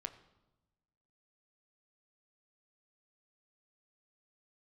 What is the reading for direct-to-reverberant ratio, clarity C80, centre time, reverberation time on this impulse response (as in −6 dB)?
7.0 dB, 15.0 dB, 8 ms, 1.0 s